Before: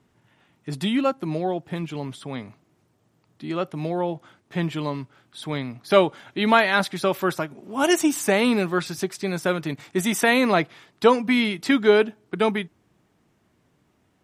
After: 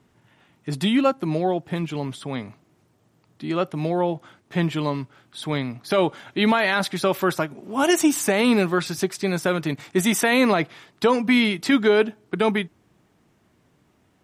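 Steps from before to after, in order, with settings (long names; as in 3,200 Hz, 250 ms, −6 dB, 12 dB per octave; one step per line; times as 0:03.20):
brickwall limiter −11.5 dBFS, peak gain reduction 9.5 dB
level +3 dB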